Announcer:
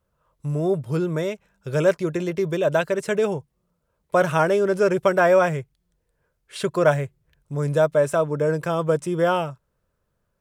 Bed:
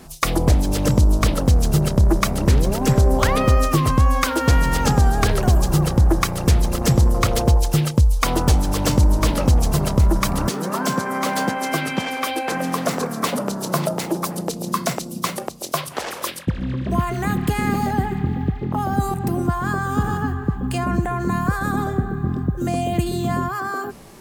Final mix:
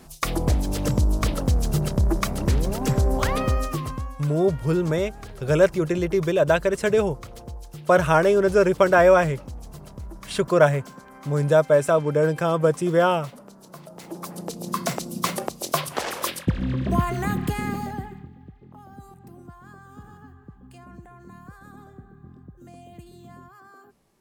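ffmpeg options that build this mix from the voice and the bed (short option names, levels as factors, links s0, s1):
-filter_complex "[0:a]adelay=3750,volume=1.19[s0];[1:a]volume=6.31,afade=t=out:st=3.36:d=0.8:silence=0.149624,afade=t=in:st=13.88:d=1.5:silence=0.0841395,afade=t=out:st=16.85:d=1.45:silence=0.0707946[s1];[s0][s1]amix=inputs=2:normalize=0"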